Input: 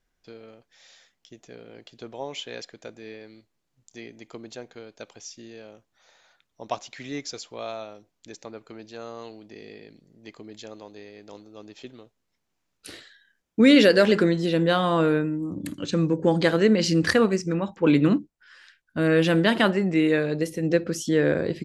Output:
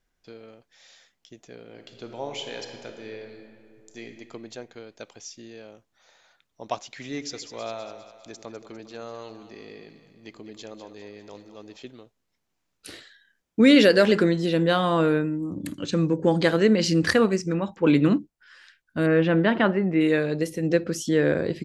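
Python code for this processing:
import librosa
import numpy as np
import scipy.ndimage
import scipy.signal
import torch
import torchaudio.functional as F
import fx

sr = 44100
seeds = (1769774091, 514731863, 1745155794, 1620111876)

y = fx.reverb_throw(x, sr, start_s=1.66, length_s=2.37, rt60_s=2.4, drr_db=4.5)
y = fx.echo_split(y, sr, split_hz=540.0, low_ms=87, high_ms=201, feedback_pct=52, wet_db=-11, at=(6.81, 11.77))
y = fx.lowpass(y, sr, hz=2200.0, slope=12, at=(19.06, 20.01))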